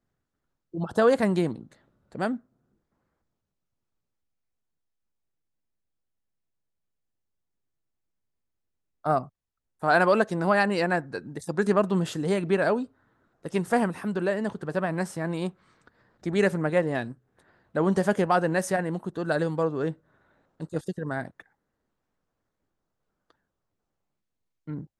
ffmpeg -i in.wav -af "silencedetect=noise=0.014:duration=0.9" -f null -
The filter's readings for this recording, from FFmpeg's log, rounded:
silence_start: 2.37
silence_end: 9.05 | silence_duration: 6.68
silence_start: 21.40
silence_end: 24.68 | silence_duration: 3.28